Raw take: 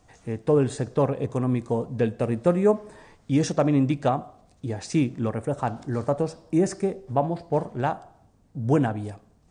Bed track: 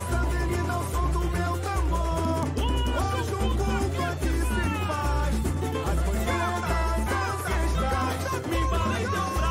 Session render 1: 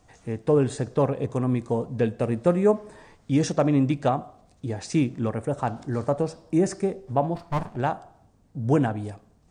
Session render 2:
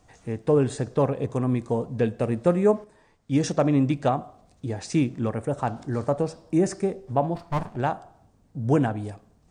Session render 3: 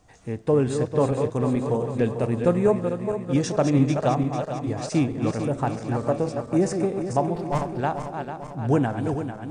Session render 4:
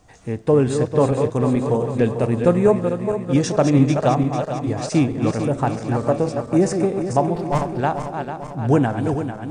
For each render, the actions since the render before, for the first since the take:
7.35–7.76 s: comb filter that takes the minimum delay 1.1 ms
2.84–3.44 s: upward expansion, over -37 dBFS
backward echo that repeats 223 ms, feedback 73%, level -7 dB
trim +4.5 dB

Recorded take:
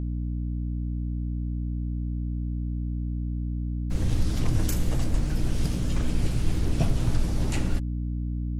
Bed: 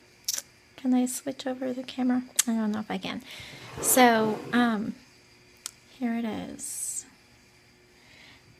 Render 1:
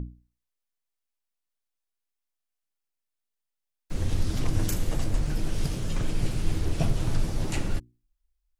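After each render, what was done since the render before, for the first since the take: hum notches 60/120/180/240/300/360 Hz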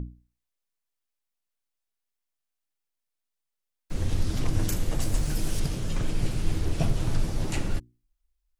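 5.00–5.60 s: treble shelf 5.5 kHz +11.5 dB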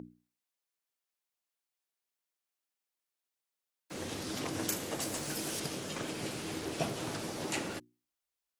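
high-pass 300 Hz 12 dB/octave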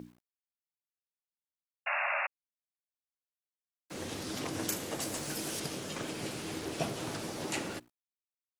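bit crusher 11-bit; 1.86–2.27 s: painted sound noise 550–2800 Hz -32 dBFS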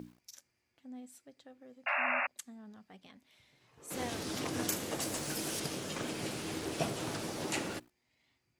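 add bed -23.5 dB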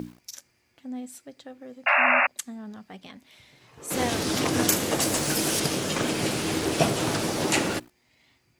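trim +12 dB

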